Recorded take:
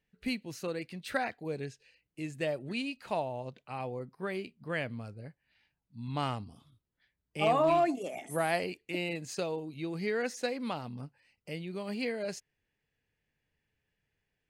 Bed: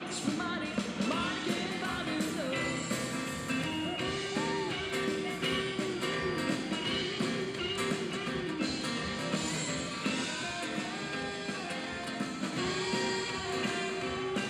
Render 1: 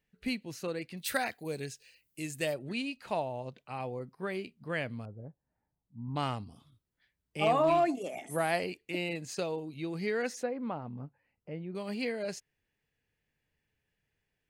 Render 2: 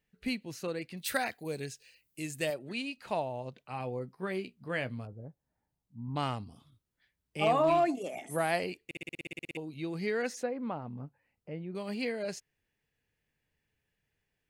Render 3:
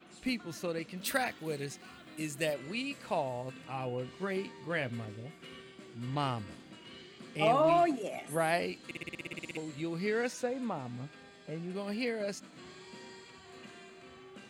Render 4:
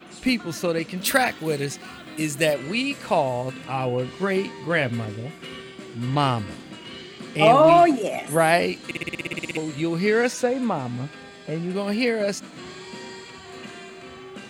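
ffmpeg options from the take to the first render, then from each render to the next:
-filter_complex "[0:a]asettb=1/sr,asplit=3[a][b][c];[a]atrim=end=0.974[d];[b]atrim=start=0.97:end=2.54,asetpts=PTS-STARTPTS,afade=t=in:d=0.004:c=qsin,afade=t=out:st=1.566:d=0.004:c=qsin,aemphasis=mode=production:type=75fm[e];[c]atrim=start=2.536[f];[d][e]acrossfade=d=0.004:c1=hsin:c2=qsin[g];[g][f]acrossfade=d=0.004:c1=qsin:c2=hsin,asettb=1/sr,asplit=3[h][i][j];[h]atrim=end=5.054[k];[i]atrim=start=5.05:end=6.16,asetpts=PTS-STARTPTS,afade=t=in:d=0.004:c=qsin,afade=t=out:st=1.106:d=0.004:c=qsin,lowpass=f=1k:w=0.5412,lowpass=f=1k:w=1.3066[l];[j]atrim=start=6.156[m];[k][l]acrossfade=d=0.004:c1=hsin:c2=qsin[n];[n][m]acrossfade=d=0.004:c1=qsin:c2=hsin,asettb=1/sr,asplit=3[o][p][q];[o]atrim=end=10.434[r];[p]atrim=start=10.43:end=11.75,asetpts=PTS-STARTPTS,afade=t=in:d=0.004:c=qsin,afade=t=out:st=1.316:d=0.004:c=qsin,lowpass=1.3k[s];[q]atrim=start=11.746[t];[r][s]acrossfade=d=0.004:c1=hsin:c2=qsin[u];[u][t]acrossfade=d=0.004:c1=qsin:c2=hsin"
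-filter_complex "[0:a]asettb=1/sr,asplit=3[a][b][c];[a]atrim=end=2.504[d];[b]atrim=start=2.5:end=2.98,asetpts=PTS-STARTPTS,afade=t=in:d=0.004:c=qsin,afade=t=out:st=0.476:d=0.004:c=qsin,highpass=f=240:p=1[e];[c]atrim=start=2.976[f];[d][e]acrossfade=d=0.004:c1=hsin:c2=qsin[g];[g][f]acrossfade=d=0.004:c1=qsin:c2=hsin,asettb=1/sr,asplit=3[h][i][j];[h]atrim=end=3.714[k];[i]atrim=start=3.71:end=5.13,asetpts=PTS-STARTPTS,afade=t=in:d=0.004:c=qsin,afade=t=out:st=1.416:d=0.004:c=qsin,asplit=2[l][m];[m]adelay=16,volume=-10.5dB[n];[l][n]amix=inputs=2:normalize=0,atrim=end_sample=62622[o];[j]atrim=start=5.126[p];[k][o]acrossfade=d=0.004:c1=hsin:c2=qsin[q];[q][p]acrossfade=d=0.004:c1=qsin:c2=hsin,asplit=13[r][s][t][u][v][w][x][y][z][aa][ab][ac][ad];[r]atrim=end=8.912[ae];[s]atrim=start=8.848:end=8.912[af];[t]atrim=start=8.848:end=8.912[ag];[u]atrim=start=8.848:end=8.912[ah];[v]atrim=start=8.848:end=8.912[ai];[w]atrim=start=8.848:end=8.912[aj];[x]atrim=start=8.848:end=8.912[ak];[y]atrim=start=8.848:end=8.912[al];[z]atrim=start=8.848:end=8.912[am];[aa]atrim=start=8.848:end=8.912[an];[ab]atrim=start=8.848:end=8.912[ao];[ac]atrim=start=8.848:end=8.912[ap];[ad]atrim=start=9.568[aq];[ae][af]acrossfade=d=0.004:c1=hsin:c2=hsin[ar];[ar][ag]acrossfade=d=0.004:c1=hsin:c2=hsin[as];[as][ah]acrossfade=d=0.004:c1=hsin:c2=hsin[at];[at][ai]acrossfade=d=0.004:c1=hsin:c2=hsin[au];[au][aj]acrossfade=d=0.004:c1=hsin:c2=hsin[av];[av][ak]acrossfade=d=0.004:c1=hsin:c2=hsin[aw];[aw][al]acrossfade=d=0.004:c1=hsin:c2=hsin[ax];[ax][am]acrossfade=d=0.004:c1=hsin:c2=hsin[ay];[ay][an]acrossfade=d=0.004:c1=hsin:c2=hsin[az];[az][ao]acrossfade=d=0.004:c1=hsin:c2=hsin[ba];[ba][ap]acrossfade=d=0.004:c1=hsin:c2=hsin[bb];[bb][aq]acrossfade=d=0.004:c1=hsin:c2=hsin"
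-filter_complex "[1:a]volume=-18dB[a];[0:a][a]amix=inputs=2:normalize=0"
-af "volume=12dB"

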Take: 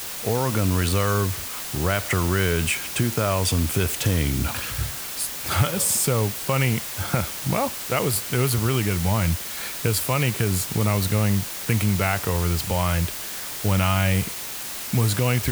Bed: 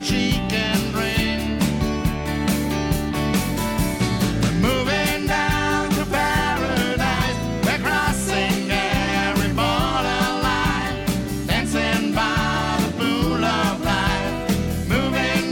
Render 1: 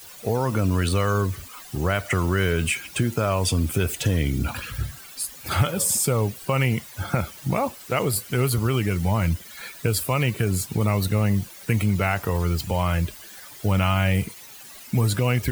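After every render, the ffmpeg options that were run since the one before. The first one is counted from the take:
-af "afftdn=nr=14:nf=-33"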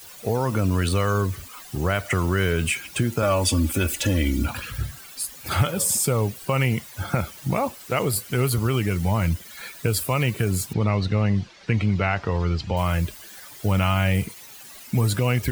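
-filter_complex "[0:a]asettb=1/sr,asplit=3[a][b][c];[a]atrim=end=3.224[d];[b]atrim=start=3.22:end=4.46,asetpts=PTS-STARTPTS,afade=t=in:d=0.004:c=qsin,afade=t=out:st=1.236:d=0.004:c=qsin,aecho=1:1:3.5:0.84,atrim=end_sample=54684[e];[c]atrim=start=4.456[f];[d][e]acrossfade=d=0.004:c1=hsin:c2=qsin[g];[g][f]acrossfade=d=0.004:c1=qsin:c2=hsin,asettb=1/sr,asplit=3[h][i][j];[h]atrim=end=10.734[k];[i]atrim=start=10.73:end=12.77,asetpts=PTS-STARTPTS,afade=t=in:d=0.004:c=qsin,afade=t=out:st=2.036:d=0.004:c=qsin,lowpass=f=5.2k:w=0.5412,lowpass=f=5.2k:w=1.3066[l];[j]atrim=start=12.766[m];[k][l]acrossfade=d=0.004:c1=hsin:c2=qsin[n];[n][m]acrossfade=d=0.004:c1=qsin:c2=hsin"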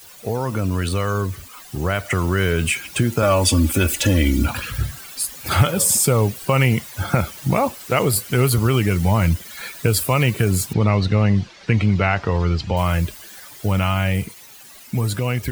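-af "dynaudnorm=f=290:g=17:m=7dB"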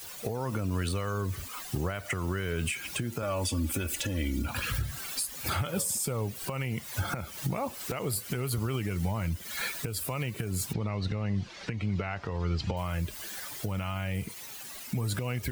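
-af "acompressor=threshold=-23dB:ratio=10,alimiter=limit=-20.5dB:level=0:latency=1:release=343"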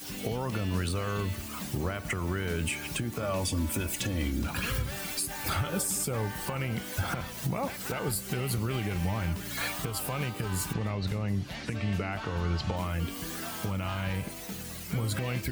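-filter_complex "[1:a]volume=-20.5dB[a];[0:a][a]amix=inputs=2:normalize=0"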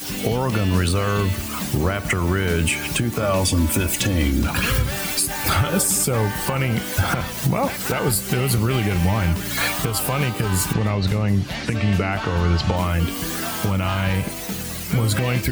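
-af "volume=11dB"

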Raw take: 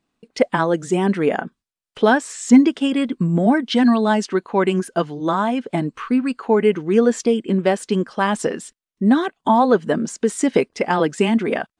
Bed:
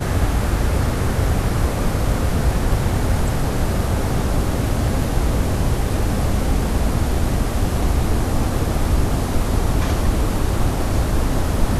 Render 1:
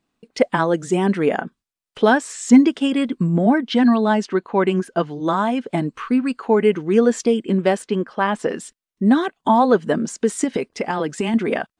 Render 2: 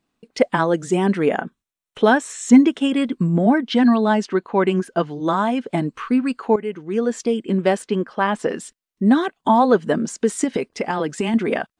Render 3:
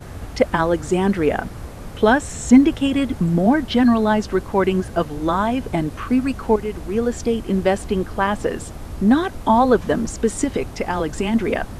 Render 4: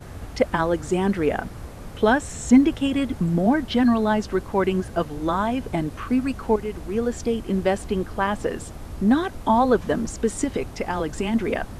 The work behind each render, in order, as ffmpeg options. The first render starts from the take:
-filter_complex "[0:a]asettb=1/sr,asplit=3[a][b][c];[a]atrim=end=3.294[d];[b]atrim=start=3.29:end=5.11,asetpts=PTS-STARTPTS,afade=t=in:d=0.004:c=qsin,afade=t=out:st=1.816:d=0.004:c=qsin,lowpass=f=3.8k:p=1[e];[c]atrim=start=5.106[f];[d][e]acrossfade=d=0.004:c1=hsin:c2=qsin[g];[g][f]acrossfade=d=0.004:c1=qsin:c2=hsin,asettb=1/sr,asplit=3[h][i][j];[h]atrim=end=7.824[k];[i]atrim=start=7.82:end=8.49,asetpts=PTS-STARTPTS,afade=t=in:d=0.004:c=qsin,afade=t=out:st=0.666:d=0.004:c=qsin,bass=f=250:g=-4,treble=f=4k:g=-12[l];[j]atrim=start=8.486[m];[k][l]acrossfade=d=0.004:c1=hsin:c2=qsin[n];[n][m]acrossfade=d=0.004:c1=qsin:c2=hsin,asettb=1/sr,asplit=3[o][p][q];[o]atrim=end=10.444[r];[p]atrim=start=10.44:end=11.34,asetpts=PTS-STARTPTS,afade=t=in:d=0.004:c=qsin,afade=t=out:st=0.896:d=0.004:c=qsin,acompressor=threshold=-17dB:ratio=5:attack=3.2:release=140:knee=1:detection=peak[s];[q]atrim=start=11.336[t];[r][s]acrossfade=d=0.004:c1=hsin:c2=qsin[u];[u][t]acrossfade=d=0.004:c1=qsin:c2=hsin"
-filter_complex "[0:a]asettb=1/sr,asplit=3[a][b][c];[a]atrim=end=1.284[d];[b]atrim=start=1.28:end=2.96,asetpts=PTS-STARTPTS,afade=t=in:d=0.004:c=qsin,afade=t=out:st=1.676:d=0.004:c=qsin,bandreject=f=4.8k:w=5.8[e];[c]atrim=start=2.956[f];[d][e]acrossfade=d=0.004:c1=hsin:c2=qsin[g];[g][f]acrossfade=d=0.004:c1=qsin:c2=hsin,asplit=2[h][i];[h]atrim=end=6.56,asetpts=PTS-STARTPTS,afade=t=out:st=6.556:d=0.004:c=hsin:silence=0.211349[j];[i]atrim=start=6.56,asetpts=PTS-STARTPTS,afade=t=in:d=1.16:silence=0.211349[k];[j][k]concat=n=2:v=0:a=1"
-filter_complex "[1:a]volume=-14.5dB[a];[0:a][a]amix=inputs=2:normalize=0"
-af "volume=-3.5dB"

